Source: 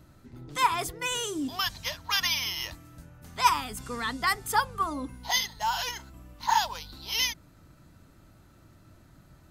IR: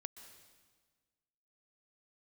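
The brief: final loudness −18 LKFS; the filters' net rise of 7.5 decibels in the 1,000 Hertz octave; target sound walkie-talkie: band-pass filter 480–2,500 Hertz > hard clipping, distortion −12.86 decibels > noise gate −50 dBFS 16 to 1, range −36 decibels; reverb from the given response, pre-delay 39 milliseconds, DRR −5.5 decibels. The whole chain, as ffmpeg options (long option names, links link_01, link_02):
-filter_complex "[0:a]equalizer=frequency=1000:width_type=o:gain=8.5,asplit=2[link_01][link_02];[1:a]atrim=start_sample=2205,adelay=39[link_03];[link_02][link_03]afir=irnorm=-1:irlink=0,volume=10dB[link_04];[link_01][link_04]amix=inputs=2:normalize=0,highpass=480,lowpass=2500,asoftclip=type=hard:threshold=-6.5dB,agate=range=-36dB:threshold=-50dB:ratio=16,volume=1dB"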